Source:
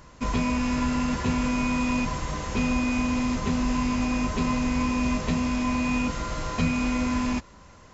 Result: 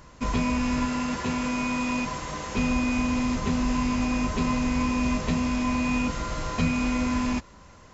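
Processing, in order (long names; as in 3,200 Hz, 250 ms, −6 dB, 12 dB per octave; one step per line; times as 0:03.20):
0:00.85–0:02.57: low-shelf EQ 130 Hz −11 dB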